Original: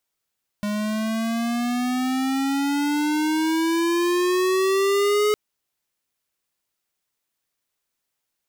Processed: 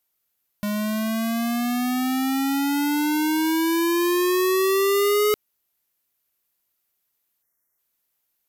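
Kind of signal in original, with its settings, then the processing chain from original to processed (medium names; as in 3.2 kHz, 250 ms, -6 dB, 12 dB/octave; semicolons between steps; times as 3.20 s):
gliding synth tone square, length 4.71 s, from 206 Hz, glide +12.5 st, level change +6 dB, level -19 dB
spectral selection erased 7.43–7.79 s, 2.2–5.3 kHz; peaking EQ 13 kHz +14.5 dB 0.34 oct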